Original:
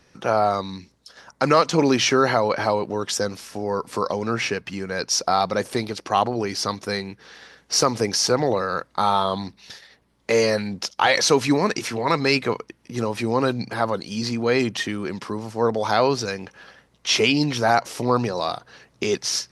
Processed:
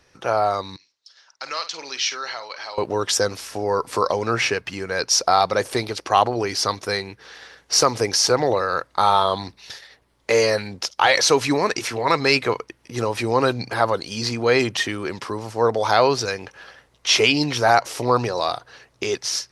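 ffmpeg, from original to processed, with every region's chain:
-filter_complex "[0:a]asettb=1/sr,asplit=3[a][b][c];[a]atrim=end=0.764[d];[b]atrim=start=0.76:end=2.78,asetpts=PTS-STARTPTS,afade=t=in:d=0.004:c=qsin,afade=t=out:st=2.016:d=0.004:c=qsin,lowpass=f=5.4k:w=0.5412,lowpass=f=5.4k:w=1.3066,aderivative,asplit=2[e][f];[f]adelay=50,volume=-12dB[g];[e][g]amix=inputs=2:normalize=0,atrim=end_sample=89082[h];[c]atrim=start=2.776[i];[d][h]acrossfade=d=0.004:c1=hsin:c2=qsin[j];[j][i]acrossfade=d=0.004:c1=qsin:c2=hsin,equalizer=f=200:w=1.5:g=-9.5,dynaudnorm=f=150:g=13:m=5dB"

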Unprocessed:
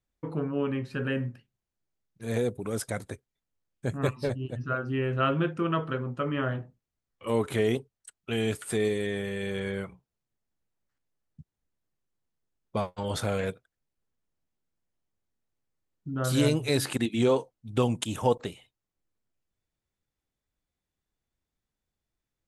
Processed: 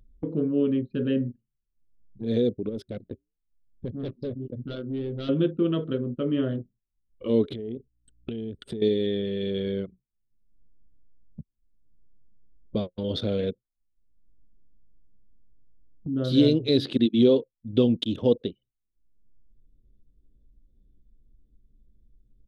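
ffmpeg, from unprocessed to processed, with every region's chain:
-filter_complex "[0:a]asettb=1/sr,asplit=3[a][b][c];[a]atrim=end=2.694[d];[b]atrim=start=2.69:end=5.29,asetpts=PTS-STARTPTS,afade=t=in:d=0.004:c=qsin,afade=t=out:st=2.596:d=0.004:c=qsin,flanger=delay=5.2:depth=4.1:regen=-83:speed=1.1:shape=triangular,volume=32dB,asoftclip=hard,volume=-32dB[e];[c]atrim=start=5.286[f];[d][e]acrossfade=d=0.004:c1=hsin:c2=qsin[g];[g][f]acrossfade=d=0.004:c1=qsin:c2=hsin,asettb=1/sr,asplit=3[h][i][j];[h]atrim=end=7.534[k];[i]atrim=start=7.53:end=8.82,asetpts=PTS-STARTPTS,afade=t=in:d=0.004:c=qsin,afade=t=out:st=1.286:d=0.004:c=qsin,lowshelf=f=88:g=11,acompressor=threshold=-34dB:ratio=16:attack=3.2:release=140:knee=1:detection=peak,aeval=exprs='val(0)+0.000251*(sin(2*PI*60*n/s)+sin(2*PI*2*60*n/s)/2+sin(2*PI*3*60*n/s)/3+sin(2*PI*4*60*n/s)/4+sin(2*PI*5*60*n/s)/5)':c=same[l];[j]atrim=start=8.816[m];[k][l]acrossfade=d=0.004:c1=hsin:c2=qsin[n];[n][m]acrossfade=d=0.004:c1=qsin:c2=hsin,anlmdn=0.631,firequalizer=gain_entry='entry(150,0);entry(230,8);entry(520,3);entry(820,-14);entry(2500,-7);entry(3500,8);entry(7300,-23)':delay=0.05:min_phase=1,acompressor=mode=upward:threshold=-29dB:ratio=2.5"

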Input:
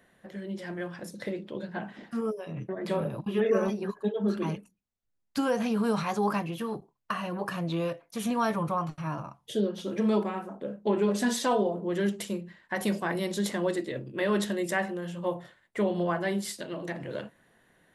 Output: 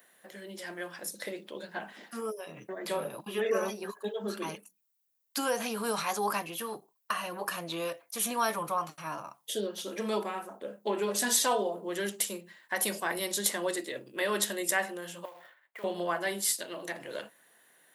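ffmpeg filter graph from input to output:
-filter_complex "[0:a]asettb=1/sr,asplit=3[a][b][c];[a]atrim=end=15.254[d];[b]atrim=start=15.25:end=15.84,asetpts=PTS-STARTPTS,afade=t=in:d=0.004:c=qsin,afade=t=out:st=0.586:d=0.004:c=qsin,acrusher=bits=3:mode=log:mix=0:aa=0.000001,acrossover=split=510 2800:gain=0.224 1 0.1[e][f][g];[e][f][g]amix=inputs=3:normalize=0,acompressor=threshold=-43dB:ratio=4:attack=3.2:release=140:knee=1:detection=peak[h];[c]atrim=start=15.836[i];[d][h]acrossfade=d=0.004:c1=hsin:c2=qsin[j];[j][i]acrossfade=d=0.004:c1=qsin:c2=hsin,highpass=f=350:p=1,aemphasis=mode=production:type=bsi"

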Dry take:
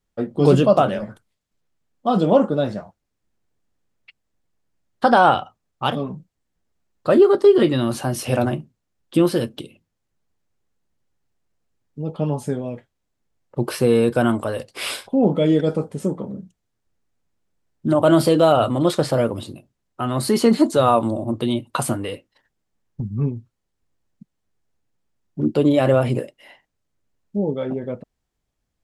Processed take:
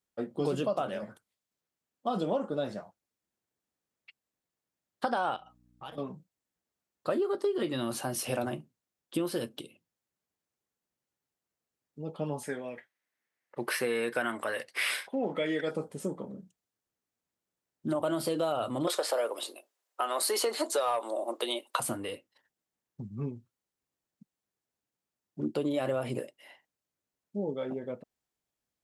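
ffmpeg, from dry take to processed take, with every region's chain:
-filter_complex "[0:a]asettb=1/sr,asplit=3[a][b][c];[a]atrim=end=5.364[d];[b]atrim=start=5.36:end=5.98,asetpts=PTS-STARTPTS,afade=t=in:d=0.004:c=qsin,afade=t=out:st=0.616:d=0.004:c=qsin,aecho=1:1:6.3:0.56,atrim=end_sample=27342,acompressor=threshold=-39dB:ratio=2.5:attack=3.2:release=140:knee=1:detection=peak,aeval=exprs='val(0)+0.00398*(sin(2*PI*60*n/s)+sin(2*PI*2*60*n/s)/2+sin(2*PI*3*60*n/s)/3+sin(2*PI*4*60*n/s)/4+sin(2*PI*5*60*n/s)/5)':c=same[e];[c]atrim=start=5.976[f];[d][e]acrossfade=d=0.004:c1=hsin:c2=qsin[g];[g][f]acrossfade=d=0.004:c1=qsin:c2=hsin,asettb=1/sr,asplit=3[h][i][j];[h]atrim=end=12.434[k];[i]atrim=start=12.43:end=15.71,asetpts=PTS-STARTPTS,afade=t=in:d=0.004:c=qsin,afade=t=out:st=3.276:d=0.004:c=qsin,highpass=f=290:p=1,equalizer=f=1.9k:w=1.8:g=15,bandreject=f=7.2k:w=14[l];[j]atrim=start=15.706[m];[k][l]acrossfade=d=0.004:c1=hsin:c2=qsin[n];[n][m]acrossfade=d=0.004:c1=qsin:c2=hsin,asettb=1/sr,asplit=3[o][p][q];[o]atrim=end=18.874[r];[p]atrim=start=18.87:end=21.8,asetpts=PTS-STARTPTS,afade=t=in:d=0.004:c=qsin,afade=t=out:st=2.926:d=0.004:c=qsin,highpass=f=440:w=0.5412,highpass=f=440:w=1.3066,acontrast=81[s];[q]atrim=start=21.796[t];[r][s]acrossfade=d=0.004:c1=hsin:c2=qsin[u];[u][t]acrossfade=d=0.004:c1=qsin:c2=hsin,highpass=f=280:p=1,highshelf=f=8.6k:g=7,acompressor=threshold=-19dB:ratio=6,volume=-7.5dB"

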